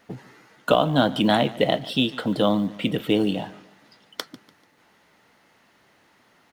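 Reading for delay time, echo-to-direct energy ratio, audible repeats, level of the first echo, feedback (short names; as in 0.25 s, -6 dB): 0.146 s, -19.0 dB, 2, -19.5 dB, 39%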